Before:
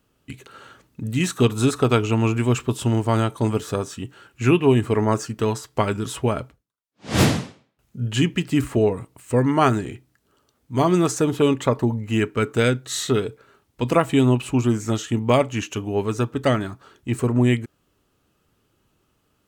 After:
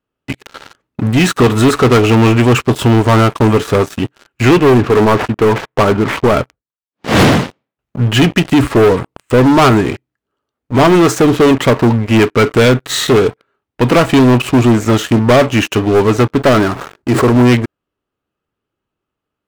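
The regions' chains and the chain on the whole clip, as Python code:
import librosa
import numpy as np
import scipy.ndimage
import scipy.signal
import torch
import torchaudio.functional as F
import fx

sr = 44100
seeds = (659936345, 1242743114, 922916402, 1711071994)

y = fx.chain(x, sr, fx.highpass(hz=86.0, slope=12),
    fx.resample_linear(factor=8), at=(4.58, 6.33))
y = fx.chain(y, sr, fx.median_filter(points=15),
    fx.bass_treble(bass_db=-5, treble_db=8),
    fx.sustainer(db_per_s=70.0), at=(16.47, 17.34))
y = fx.bass_treble(y, sr, bass_db=-5, treble_db=-12)
y = fx.leveller(y, sr, passes=5)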